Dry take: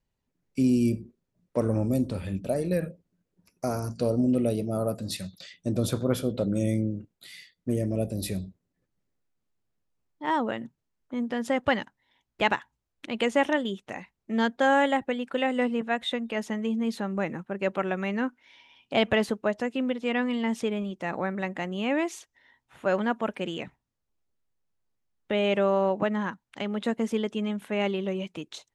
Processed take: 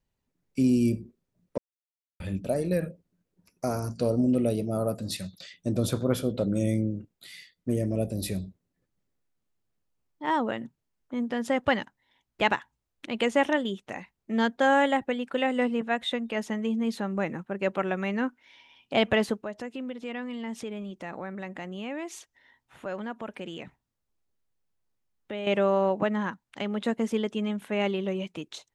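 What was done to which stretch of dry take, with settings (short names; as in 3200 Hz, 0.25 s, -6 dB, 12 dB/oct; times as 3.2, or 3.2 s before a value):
1.58–2.2 mute
19.42–25.47 compressor 2:1, threshold -38 dBFS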